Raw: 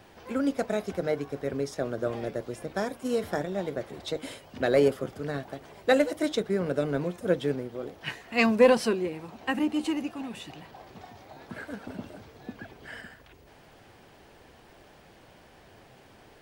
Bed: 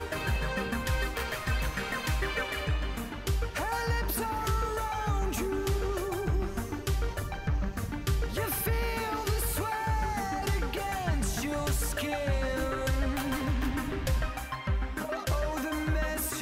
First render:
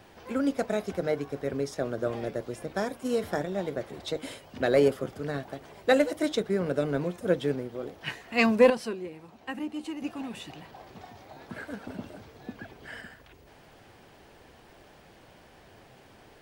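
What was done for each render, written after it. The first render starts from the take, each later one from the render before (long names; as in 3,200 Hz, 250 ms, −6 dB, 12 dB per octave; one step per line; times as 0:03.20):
0:08.70–0:10.02: clip gain −7.5 dB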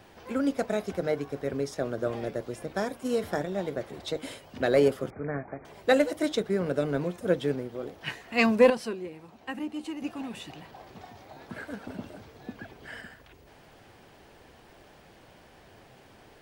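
0:05.10–0:05.65: linear-phase brick-wall low-pass 2,500 Hz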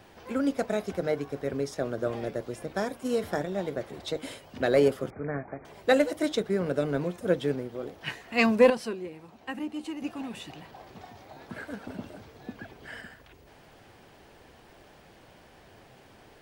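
no processing that can be heard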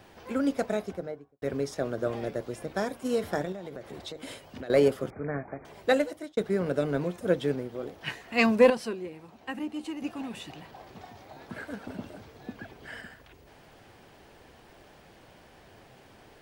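0:00.63–0:01.42: fade out and dull
0:03.52–0:04.70: downward compressor 12 to 1, threshold −35 dBFS
0:05.83–0:06.37: fade out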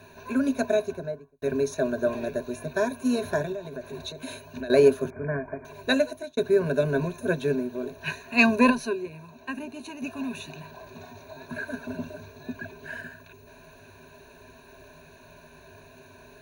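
EQ curve with evenly spaced ripples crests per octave 1.5, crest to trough 18 dB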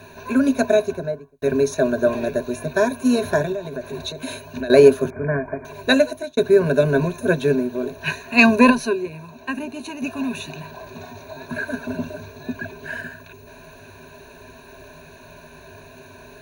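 level +7 dB
brickwall limiter −1 dBFS, peak gain reduction 2 dB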